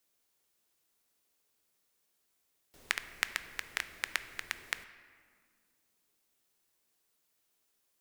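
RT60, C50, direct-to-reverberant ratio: 2.0 s, 13.0 dB, 11.0 dB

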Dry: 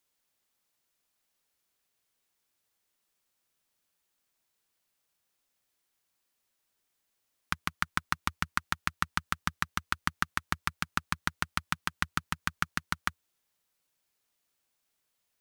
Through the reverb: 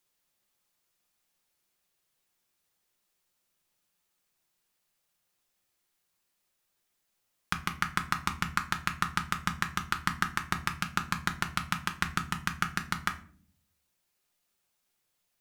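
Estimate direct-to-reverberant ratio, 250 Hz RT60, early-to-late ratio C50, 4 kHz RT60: 4.5 dB, 0.85 s, 14.0 dB, 0.30 s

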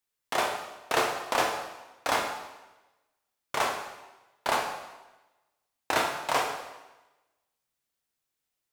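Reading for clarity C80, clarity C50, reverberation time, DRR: 8.0 dB, 6.0 dB, 1.1 s, 2.0 dB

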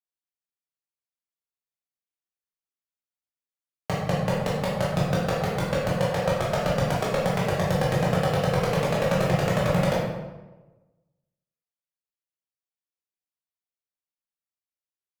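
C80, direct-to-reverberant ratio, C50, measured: 3.0 dB, −6.5 dB, 0.0 dB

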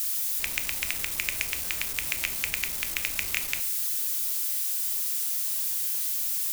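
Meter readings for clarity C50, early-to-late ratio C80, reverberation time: 14.5 dB, 18.5 dB, 0.50 s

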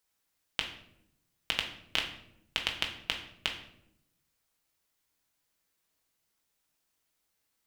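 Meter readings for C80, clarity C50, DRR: 11.5 dB, 8.0 dB, 1.5 dB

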